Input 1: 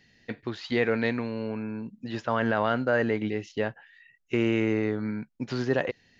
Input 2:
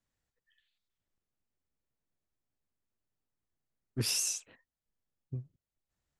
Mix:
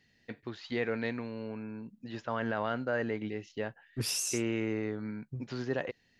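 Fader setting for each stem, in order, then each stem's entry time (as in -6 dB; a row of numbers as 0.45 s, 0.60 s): -7.5 dB, -1.5 dB; 0.00 s, 0.00 s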